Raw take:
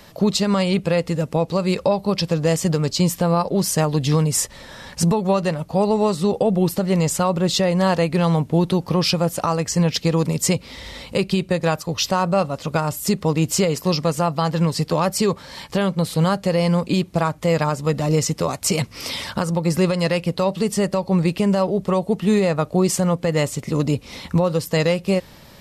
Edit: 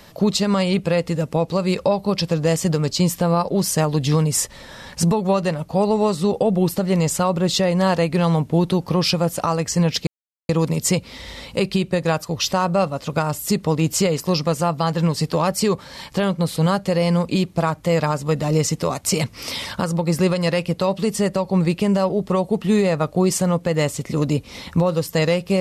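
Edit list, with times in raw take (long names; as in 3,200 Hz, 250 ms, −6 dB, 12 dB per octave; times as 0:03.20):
0:10.07: splice in silence 0.42 s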